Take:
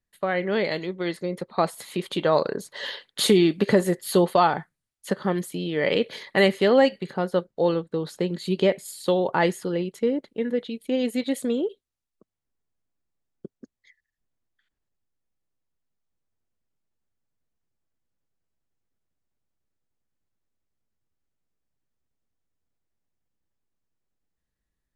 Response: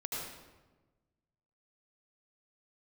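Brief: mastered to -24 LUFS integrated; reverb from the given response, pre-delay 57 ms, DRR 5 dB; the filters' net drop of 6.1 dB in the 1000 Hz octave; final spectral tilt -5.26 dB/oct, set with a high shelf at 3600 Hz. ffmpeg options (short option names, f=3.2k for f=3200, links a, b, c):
-filter_complex "[0:a]equalizer=f=1k:t=o:g=-8,highshelf=f=3.6k:g=-6.5,asplit=2[a][b];[1:a]atrim=start_sample=2205,adelay=57[c];[b][c]afir=irnorm=-1:irlink=0,volume=-7.5dB[d];[a][d]amix=inputs=2:normalize=0,volume=0.5dB"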